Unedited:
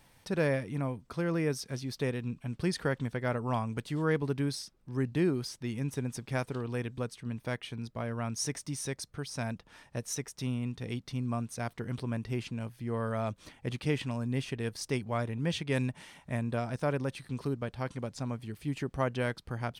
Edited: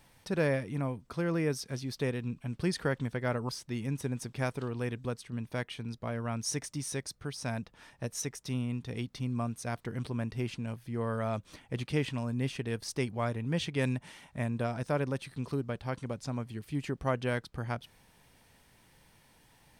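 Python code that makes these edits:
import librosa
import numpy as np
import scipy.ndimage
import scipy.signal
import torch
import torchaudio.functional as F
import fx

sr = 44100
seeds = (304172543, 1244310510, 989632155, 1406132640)

y = fx.edit(x, sr, fx.cut(start_s=3.49, length_s=1.93), tone=tone)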